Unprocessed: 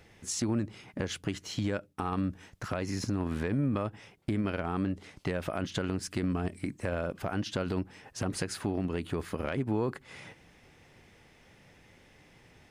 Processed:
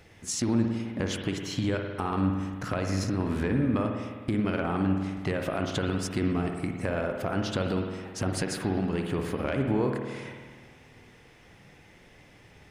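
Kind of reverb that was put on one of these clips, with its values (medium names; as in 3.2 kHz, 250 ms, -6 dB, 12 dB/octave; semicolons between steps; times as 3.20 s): spring tank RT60 1.6 s, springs 52 ms, chirp 75 ms, DRR 3 dB; trim +2.5 dB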